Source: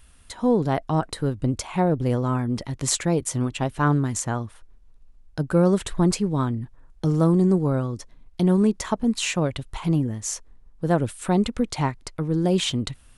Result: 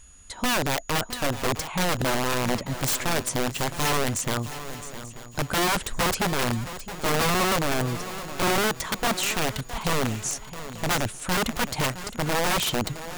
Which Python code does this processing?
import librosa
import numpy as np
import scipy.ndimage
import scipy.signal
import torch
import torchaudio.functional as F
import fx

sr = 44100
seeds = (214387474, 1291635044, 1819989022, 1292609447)

y = (np.mod(10.0 ** (18.5 / 20.0) * x + 1.0, 2.0) - 1.0) / 10.0 ** (18.5 / 20.0)
y = fx.echo_swing(y, sr, ms=887, ratio=3, feedback_pct=35, wet_db=-13.0)
y = y + 10.0 ** (-52.0 / 20.0) * np.sin(2.0 * np.pi * 6800.0 * np.arange(len(y)) / sr)